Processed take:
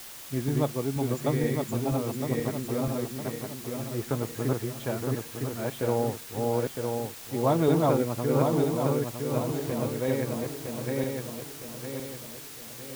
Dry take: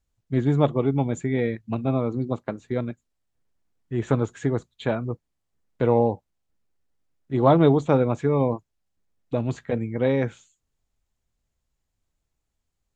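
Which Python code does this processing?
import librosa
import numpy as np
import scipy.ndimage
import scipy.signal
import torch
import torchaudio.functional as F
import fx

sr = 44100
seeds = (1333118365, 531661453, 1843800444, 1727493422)

y = fx.reverse_delay_fb(x, sr, ms=480, feedback_pct=66, wet_db=-0.5)
y = fx.quant_dither(y, sr, seeds[0], bits=6, dither='triangular')
y = F.gain(torch.from_numpy(y), -7.5).numpy()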